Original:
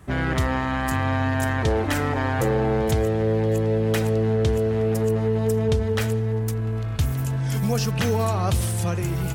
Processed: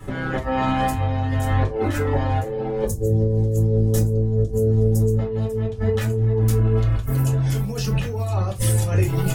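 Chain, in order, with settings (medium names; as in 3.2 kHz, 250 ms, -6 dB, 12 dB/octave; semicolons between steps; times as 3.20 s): 2.84–5.19 s: FFT filter 150 Hz 0 dB, 2.5 kHz -25 dB, 6.3 kHz -1 dB; reverb removal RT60 0.77 s; compressor with a negative ratio -28 dBFS, ratio -0.5; reverberation RT60 0.25 s, pre-delay 5 ms, DRR -2.5 dB; trim -1.5 dB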